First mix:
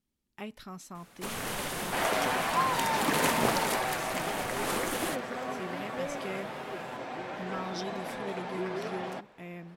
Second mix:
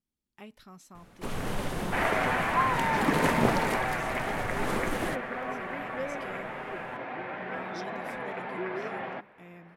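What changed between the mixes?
speech −6.5 dB
first sound: add spectral tilt −2.5 dB per octave
second sound: add low-pass with resonance 2,100 Hz, resonance Q 1.7

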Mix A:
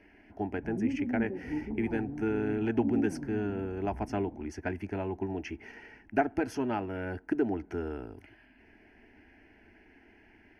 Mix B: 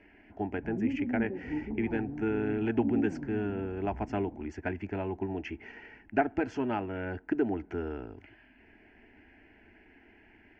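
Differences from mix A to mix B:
speech: remove moving average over 6 samples
master: add low-pass filter 3,300 Hz 24 dB per octave

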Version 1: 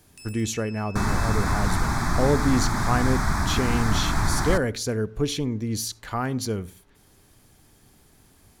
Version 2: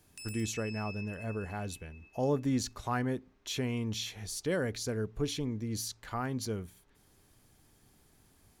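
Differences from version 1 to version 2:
speech −6.5 dB
second sound: muted
reverb: off

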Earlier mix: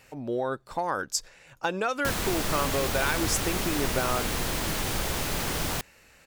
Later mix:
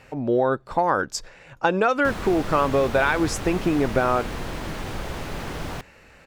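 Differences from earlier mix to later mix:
speech +9.0 dB
master: add low-pass filter 1,800 Hz 6 dB per octave

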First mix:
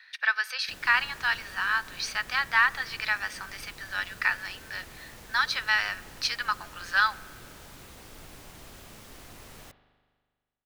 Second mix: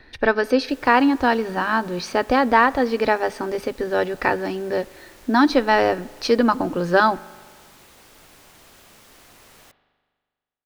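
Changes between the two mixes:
speech: remove high-pass filter 1,400 Hz 24 dB per octave
background: add low-shelf EQ 210 Hz −10 dB

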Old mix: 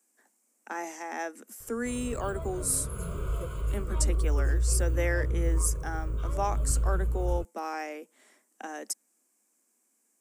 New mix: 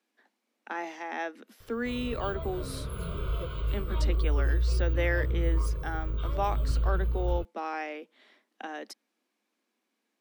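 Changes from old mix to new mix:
background: remove high-frequency loss of the air 59 metres
master: add high shelf with overshoot 5,500 Hz −14 dB, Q 3

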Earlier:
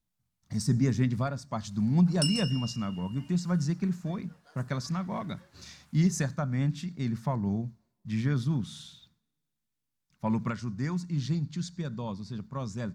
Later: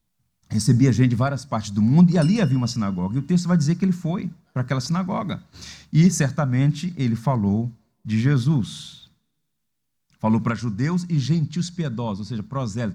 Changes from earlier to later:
speech +9.0 dB
background −9.0 dB

